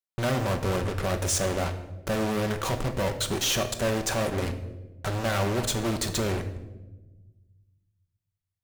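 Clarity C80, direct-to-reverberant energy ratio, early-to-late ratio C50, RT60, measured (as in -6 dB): 13.5 dB, 6.0 dB, 10.5 dB, 1.1 s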